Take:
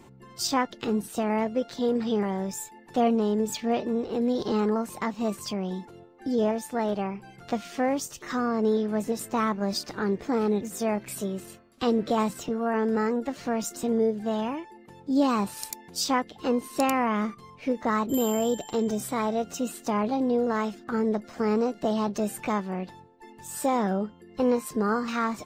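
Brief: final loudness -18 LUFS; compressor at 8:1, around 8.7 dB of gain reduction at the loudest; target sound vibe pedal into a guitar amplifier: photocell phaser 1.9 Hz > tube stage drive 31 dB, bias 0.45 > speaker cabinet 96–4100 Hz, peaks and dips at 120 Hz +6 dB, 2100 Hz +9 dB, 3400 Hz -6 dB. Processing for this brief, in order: compressor 8:1, threshold -27 dBFS; photocell phaser 1.9 Hz; tube stage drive 31 dB, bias 0.45; speaker cabinet 96–4100 Hz, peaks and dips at 120 Hz +6 dB, 2100 Hz +9 dB, 3400 Hz -6 dB; gain +21.5 dB

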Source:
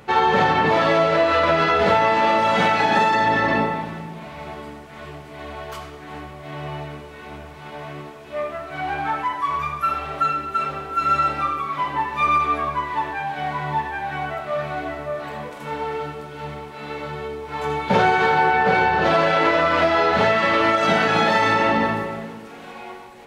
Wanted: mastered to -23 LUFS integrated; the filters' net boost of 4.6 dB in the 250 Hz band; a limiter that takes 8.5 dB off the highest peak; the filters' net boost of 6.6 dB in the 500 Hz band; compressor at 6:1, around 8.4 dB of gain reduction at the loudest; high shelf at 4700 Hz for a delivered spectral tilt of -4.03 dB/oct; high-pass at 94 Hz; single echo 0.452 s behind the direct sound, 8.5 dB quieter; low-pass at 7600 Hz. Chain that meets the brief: HPF 94 Hz; LPF 7600 Hz; bell 250 Hz +3.5 dB; bell 500 Hz +8 dB; high shelf 4700 Hz -3.5 dB; compressor 6:1, threshold -18 dBFS; limiter -16.5 dBFS; echo 0.452 s -8.5 dB; gain +2.5 dB

